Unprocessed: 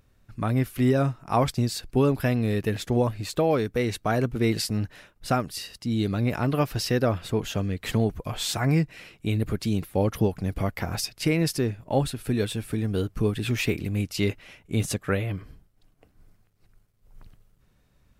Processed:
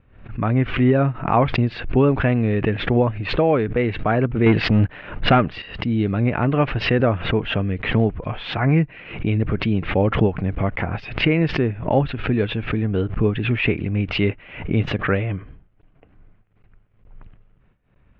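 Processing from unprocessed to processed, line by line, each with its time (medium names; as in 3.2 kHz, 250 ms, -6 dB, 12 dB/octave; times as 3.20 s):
4.46–5.62 s: waveshaping leveller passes 2
whole clip: steep low-pass 2.9 kHz 36 dB/octave; gate with hold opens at -53 dBFS; swell ahead of each attack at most 97 dB/s; trim +5 dB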